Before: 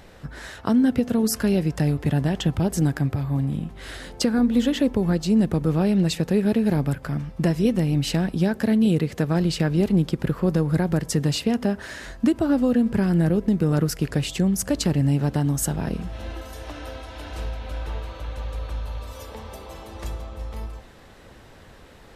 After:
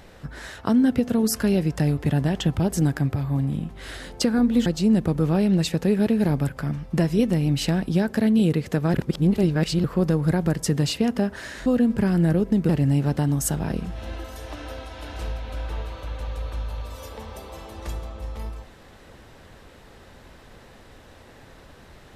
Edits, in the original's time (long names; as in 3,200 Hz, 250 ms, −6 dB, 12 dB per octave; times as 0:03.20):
0:04.66–0:05.12: remove
0:09.40–0:10.30: reverse
0:12.12–0:12.62: remove
0:13.65–0:14.86: remove